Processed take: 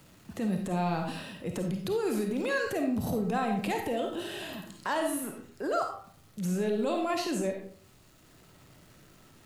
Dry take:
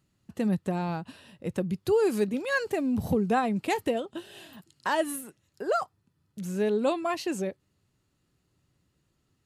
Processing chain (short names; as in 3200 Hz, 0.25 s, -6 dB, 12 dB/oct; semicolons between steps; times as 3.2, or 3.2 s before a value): compressor, threshold -30 dBFS, peak gain reduction 10 dB; requantised 12-bit, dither none; transient shaper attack -9 dB, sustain +3 dB; digital reverb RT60 0.49 s, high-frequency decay 0.7×, pre-delay 10 ms, DRR 2.5 dB; three-band squash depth 40%; gain +3.5 dB